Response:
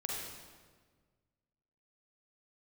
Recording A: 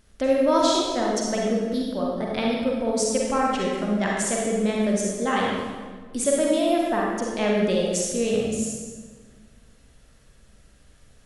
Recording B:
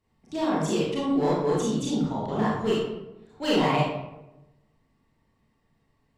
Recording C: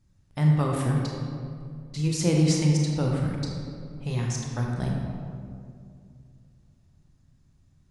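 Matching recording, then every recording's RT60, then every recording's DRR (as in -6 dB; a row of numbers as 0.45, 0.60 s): A; 1.5, 0.95, 2.3 s; -3.0, -7.5, -1.0 dB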